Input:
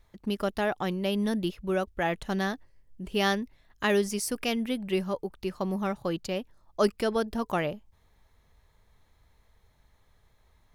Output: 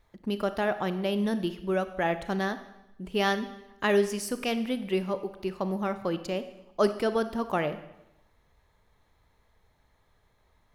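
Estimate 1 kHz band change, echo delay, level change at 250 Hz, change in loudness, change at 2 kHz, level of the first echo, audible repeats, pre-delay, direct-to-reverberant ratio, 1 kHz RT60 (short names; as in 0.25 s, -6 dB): +1.0 dB, none, -0.5 dB, +0.5 dB, 0.0 dB, none, none, 28 ms, 11.0 dB, 0.90 s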